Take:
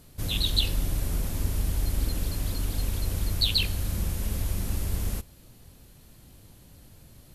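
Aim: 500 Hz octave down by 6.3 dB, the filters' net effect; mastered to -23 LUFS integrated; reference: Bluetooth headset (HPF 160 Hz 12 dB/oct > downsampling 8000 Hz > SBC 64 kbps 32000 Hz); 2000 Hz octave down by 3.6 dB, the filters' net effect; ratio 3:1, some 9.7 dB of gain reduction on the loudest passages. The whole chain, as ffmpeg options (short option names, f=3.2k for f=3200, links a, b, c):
-af "equalizer=f=500:t=o:g=-8,equalizer=f=2k:t=o:g=-5,acompressor=threshold=-34dB:ratio=3,highpass=160,aresample=8000,aresample=44100,volume=23dB" -ar 32000 -c:a sbc -b:a 64k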